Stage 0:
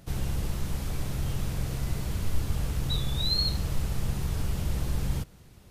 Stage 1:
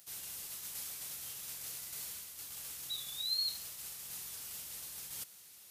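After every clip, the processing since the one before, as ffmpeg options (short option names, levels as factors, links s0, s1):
-af "areverse,acompressor=threshold=0.0224:ratio=6,areverse,aderivative,volume=2.66"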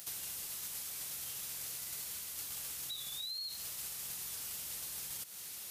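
-af "alimiter=level_in=3.35:limit=0.0631:level=0:latency=1:release=63,volume=0.299,acompressor=threshold=0.00282:ratio=6,volume=3.55"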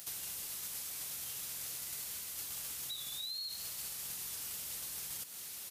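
-filter_complex "[0:a]asplit=7[s0][s1][s2][s3][s4][s5][s6];[s1]adelay=201,afreqshift=120,volume=0.2[s7];[s2]adelay=402,afreqshift=240,volume=0.114[s8];[s3]adelay=603,afreqshift=360,volume=0.0646[s9];[s4]adelay=804,afreqshift=480,volume=0.0372[s10];[s5]adelay=1005,afreqshift=600,volume=0.0211[s11];[s6]adelay=1206,afreqshift=720,volume=0.012[s12];[s0][s7][s8][s9][s10][s11][s12]amix=inputs=7:normalize=0"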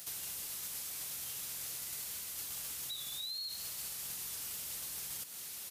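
-af "asoftclip=type=tanh:threshold=0.0251,volume=1.12"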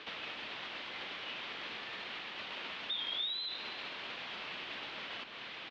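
-filter_complex "[0:a]highpass=f=450:t=q:w=0.5412,highpass=f=450:t=q:w=1.307,lowpass=f=3600:t=q:w=0.5176,lowpass=f=3600:t=q:w=0.7071,lowpass=f=3600:t=q:w=1.932,afreqshift=-240,asplit=2[s0][s1];[s1]adelay=314.9,volume=0.251,highshelf=f=4000:g=-7.08[s2];[s0][s2]amix=inputs=2:normalize=0,volume=3.55"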